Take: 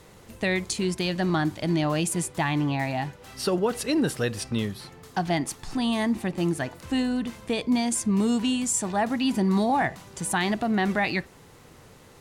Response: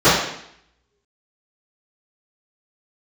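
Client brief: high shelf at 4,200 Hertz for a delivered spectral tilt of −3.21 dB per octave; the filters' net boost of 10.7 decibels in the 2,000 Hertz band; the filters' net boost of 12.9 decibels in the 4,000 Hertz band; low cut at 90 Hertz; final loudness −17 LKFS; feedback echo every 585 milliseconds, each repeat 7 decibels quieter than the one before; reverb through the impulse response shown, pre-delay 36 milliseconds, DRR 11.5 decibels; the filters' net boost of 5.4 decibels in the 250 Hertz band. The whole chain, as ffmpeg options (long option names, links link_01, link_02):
-filter_complex "[0:a]highpass=90,equalizer=frequency=250:width_type=o:gain=6.5,equalizer=frequency=2000:width_type=o:gain=8.5,equalizer=frequency=4000:width_type=o:gain=8.5,highshelf=frequency=4200:gain=9,aecho=1:1:585|1170|1755|2340|2925:0.447|0.201|0.0905|0.0407|0.0183,asplit=2[link_01][link_02];[1:a]atrim=start_sample=2205,adelay=36[link_03];[link_02][link_03]afir=irnorm=-1:irlink=0,volume=-39dB[link_04];[link_01][link_04]amix=inputs=2:normalize=0,volume=1.5dB"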